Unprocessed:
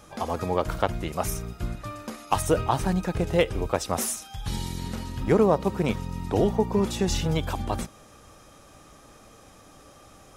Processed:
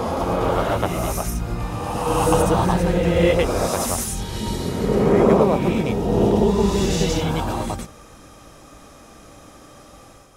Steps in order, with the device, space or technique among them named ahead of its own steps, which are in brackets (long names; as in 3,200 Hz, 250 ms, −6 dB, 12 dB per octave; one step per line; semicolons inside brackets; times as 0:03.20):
reverse reverb (reversed playback; convolution reverb RT60 2.0 s, pre-delay 85 ms, DRR −5 dB; reversed playback)